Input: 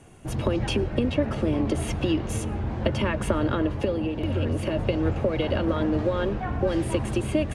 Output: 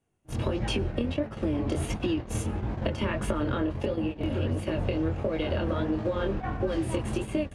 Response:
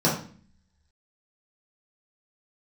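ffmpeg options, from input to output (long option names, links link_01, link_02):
-af "flanger=delay=18.5:depth=7.4:speed=1.5,acompressor=threshold=-26dB:ratio=10,agate=range=-26dB:threshold=-32dB:ratio=16:detection=peak,volume=2.5dB"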